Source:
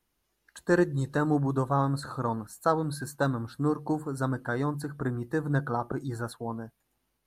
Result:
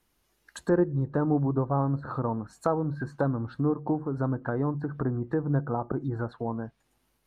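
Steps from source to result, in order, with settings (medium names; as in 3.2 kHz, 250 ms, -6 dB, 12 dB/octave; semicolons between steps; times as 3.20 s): in parallel at +1.5 dB: compression, threshold -34 dBFS, peak gain reduction 14.5 dB; on the sum: low-pass that closes with the level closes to 910 Hz, closed at -24 dBFS; trim -1.5 dB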